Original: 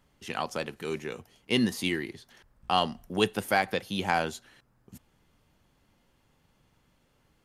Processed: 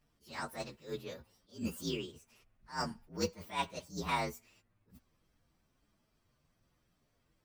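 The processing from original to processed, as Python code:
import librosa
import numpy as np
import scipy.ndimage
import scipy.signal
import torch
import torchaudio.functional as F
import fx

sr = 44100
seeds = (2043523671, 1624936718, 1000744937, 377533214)

y = fx.partial_stretch(x, sr, pct=121)
y = fx.attack_slew(y, sr, db_per_s=200.0)
y = F.gain(torch.from_numpy(y), -4.0).numpy()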